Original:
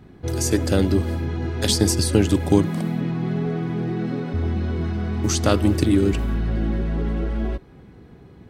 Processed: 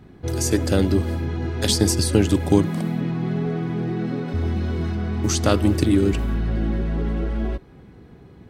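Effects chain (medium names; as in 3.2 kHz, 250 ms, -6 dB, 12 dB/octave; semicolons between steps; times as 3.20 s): 4.28–4.95 s: treble shelf 5 kHz +7 dB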